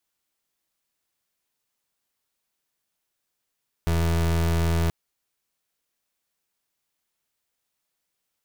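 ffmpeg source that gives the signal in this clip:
-f lavfi -i "aevalsrc='0.0794*(2*lt(mod(83*t,1),0.31)-1)':d=1.03:s=44100"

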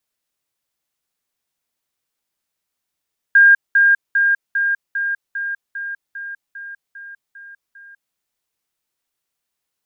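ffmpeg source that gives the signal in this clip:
-f lavfi -i "aevalsrc='pow(10,(-6-3*floor(t/0.4))/20)*sin(2*PI*1610*t)*clip(min(mod(t,0.4),0.2-mod(t,0.4))/0.005,0,1)':d=4.8:s=44100"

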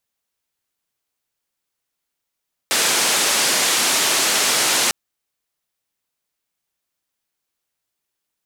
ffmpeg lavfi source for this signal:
-f lavfi -i "anoisesrc=c=white:d=2.2:r=44100:seed=1,highpass=f=240,lowpass=f=8700,volume=-9.1dB"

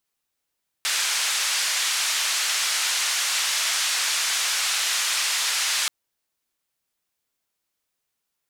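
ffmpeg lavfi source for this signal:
-f lavfi -i "anoisesrc=c=white:d=5.03:r=44100:seed=1,highpass=f=1300,lowpass=f=7200,volume=-13.6dB"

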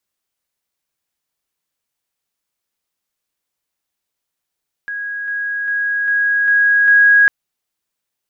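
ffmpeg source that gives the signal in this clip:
-f lavfi -i "aevalsrc='pow(10,(-21.5+3*floor(t/0.4))/20)*sin(2*PI*1650*t)':d=2.4:s=44100"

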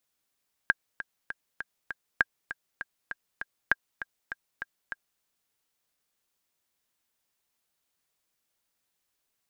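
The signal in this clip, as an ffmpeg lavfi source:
-f lavfi -i "aevalsrc='pow(10,(-7.5-13.5*gte(mod(t,5*60/199),60/199))/20)*sin(2*PI*1610*mod(t,60/199))*exp(-6.91*mod(t,60/199)/0.03)':d=4.52:s=44100"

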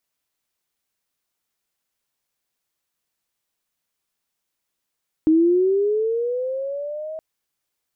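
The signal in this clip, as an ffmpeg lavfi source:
-f lavfi -i "aevalsrc='pow(10,(-11.5-17*t/1.92)/20)*sin(2*PI*(310*t+330*t*t/(2*1.92)))':d=1.92:s=44100"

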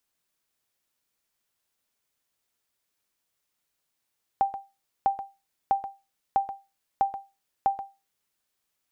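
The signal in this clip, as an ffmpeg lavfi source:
-f lavfi -i "aevalsrc='0.188*(sin(2*PI*788*mod(t,0.65))*exp(-6.91*mod(t,0.65)/0.26)+0.251*sin(2*PI*788*max(mod(t,0.65)-0.13,0))*exp(-6.91*max(mod(t,0.65)-0.13,0)/0.26))':d=3.9:s=44100"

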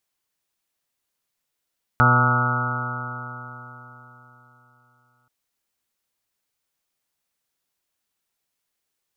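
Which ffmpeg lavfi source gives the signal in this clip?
-f lavfi -i "aevalsrc='0.15*pow(10,-3*t/3.77)*sin(2*PI*122.07*t)+0.0631*pow(10,-3*t/3.77)*sin(2*PI*244.58*t)+0.0188*pow(10,-3*t/3.77)*sin(2*PI*367.97*t)+0.0299*pow(10,-3*t/3.77)*sin(2*PI*492.66*t)+0.0335*pow(10,-3*t/3.77)*sin(2*PI*619.08*t)+0.0376*pow(10,-3*t/3.77)*sin(2*PI*747.64*t)+0.0708*pow(10,-3*t/3.77)*sin(2*PI*878.75*t)+0.0251*pow(10,-3*t/3.77)*sin(2*PI*1012.79*t)+0.0668*pow(10,-3*t/3.77)*sin(2*PI*1150.13*t)+0.15*pow(10,-3*t/3.77)*sin(2*PI*1291.13*t)+0.126*pow(10,-3*t/3.77)*sin(2*PI*1436.13*t)':d=3.28:s=44100"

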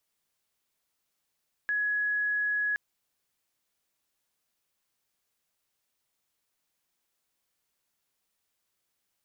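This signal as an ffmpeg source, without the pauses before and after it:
-f lavfi -i "sine=f=1680:d=1.07:r=44100,volume=-7.44dB"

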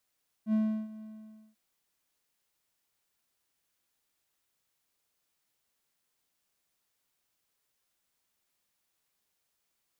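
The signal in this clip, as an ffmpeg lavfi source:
-f lavfi -i "aevalsrc='0.0891*(1-4*abs(mod(217*t+0.25,1)-0.5))':d=1.095:s=44100,afade=t=in:d=0.071,afade=t=out:st=0.071:d=0.346:silence=0.112,afade=t=out:st=0.56:d=0.535"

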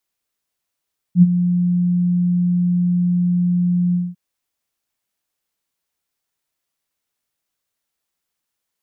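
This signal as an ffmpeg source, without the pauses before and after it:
-f lavfi -i "aevalsrc='0.668*sin(2*PI*177*t)':d=3:s=44100,afade=t=in:d=0.072,afade=t=out:st=0.072:d=0.034:silence=0.299,afade=t=out:st=2.79:d=0.21"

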